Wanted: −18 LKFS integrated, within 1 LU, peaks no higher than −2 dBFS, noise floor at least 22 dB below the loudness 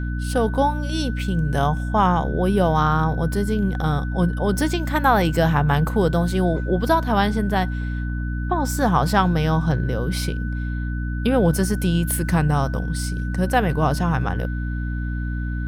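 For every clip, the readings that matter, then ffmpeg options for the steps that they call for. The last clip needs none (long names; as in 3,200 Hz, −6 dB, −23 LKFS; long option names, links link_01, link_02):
mains hum 60 Hz; hum harmonics up to 300 Hz; level of the hum −23 dBFS; interfering tone 1,500 Hz; level of the tone −36 dBFS; integrated loudness −21.5 LKFS; sample peak −4.0 dBFS; target loudness −18.0 LKFS
→ -af "bandreject=frequency=60:width_type=h:width=4,bandreject=frequency=120:width_type=h:width=4,bandreject=frequency=180:width_type=h:width=4,bandreject=frequency=240:width_type=h:width=4,bandreject=frequency=300:width_type=h:width=4"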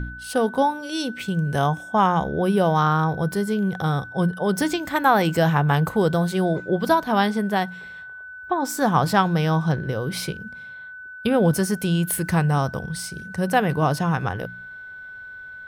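mains hum none found; interfering tone 1,500 Hz; level of the tone −36 dBFS
→ -af "bandreject=frequency=1500:width=30"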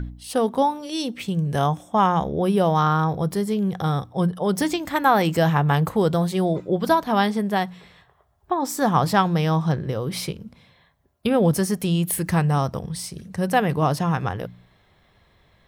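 interfering tone none found; integrated loudness −22.0 LKFS; sample peak −5.0 dBFS; target loudness −18.0 LKFS
→ -af "volume=4dB,alimiter=limit=-2dB:level=0:latency=1"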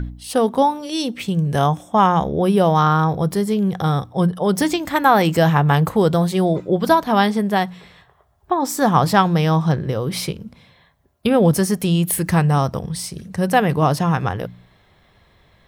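integrated loudness −18.5 LKFS; sample peak −2.0 dBFS; background noise floor −56 dBFS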